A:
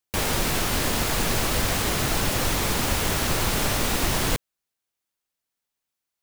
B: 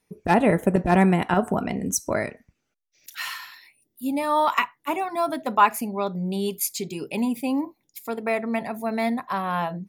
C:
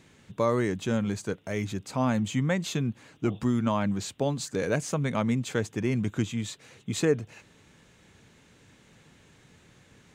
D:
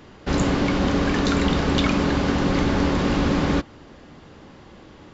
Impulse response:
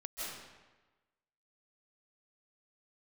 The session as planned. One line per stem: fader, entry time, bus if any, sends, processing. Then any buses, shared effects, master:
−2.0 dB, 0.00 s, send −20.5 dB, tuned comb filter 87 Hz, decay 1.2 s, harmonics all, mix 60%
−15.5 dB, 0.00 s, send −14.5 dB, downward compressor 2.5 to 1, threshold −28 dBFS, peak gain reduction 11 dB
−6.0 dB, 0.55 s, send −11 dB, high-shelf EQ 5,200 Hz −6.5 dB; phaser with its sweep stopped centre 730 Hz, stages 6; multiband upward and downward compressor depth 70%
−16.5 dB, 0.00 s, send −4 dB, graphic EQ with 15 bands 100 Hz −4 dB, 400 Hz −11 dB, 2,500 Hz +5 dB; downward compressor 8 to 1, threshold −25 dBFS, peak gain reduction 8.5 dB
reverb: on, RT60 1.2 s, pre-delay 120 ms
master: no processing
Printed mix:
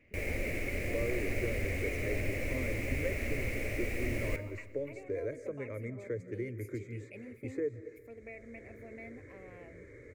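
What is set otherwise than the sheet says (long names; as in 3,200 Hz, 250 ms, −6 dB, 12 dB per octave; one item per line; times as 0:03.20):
stem B: send off
master: extra drawn EQ curve 110 Hz 0 dB, 160 Hz −12 dB, 240 Hz −4 dB, 570 Hz +1 dB, 880 Hz −21 dB, 1,500 Hz −15 dB, 2,200 Hz +7 dB, 3,300 Hz −20 dB, 7,100 Hz −15 dB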